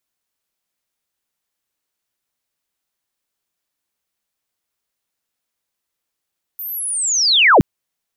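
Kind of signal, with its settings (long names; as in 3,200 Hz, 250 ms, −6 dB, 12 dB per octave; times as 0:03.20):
glide linear 14,000 Hz → 87 Hz −25.5 dBFS → −5 dBFS 1.02 s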